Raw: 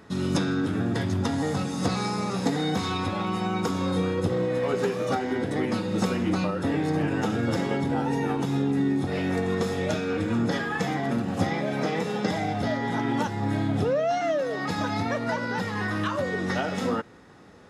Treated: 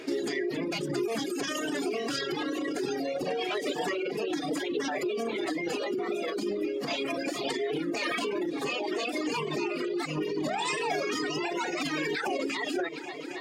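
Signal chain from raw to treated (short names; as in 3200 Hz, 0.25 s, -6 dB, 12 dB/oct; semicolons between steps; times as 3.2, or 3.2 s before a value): wide varispeed 1.32×; bell 360 Hz +14.5 dB 1.2 oct; reverb removal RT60 1.6 s; weighting filter D; on a send: multi-head echo 0.27 s, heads all three, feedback 64%, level -22.5 dB; on the sum: limiter -21 dBFS, peak gain reduction 17.5 dB; reverb removal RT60 0.87 s; notches 60/120/180/240/300 Hz; formant-preserving pitch shift +2 st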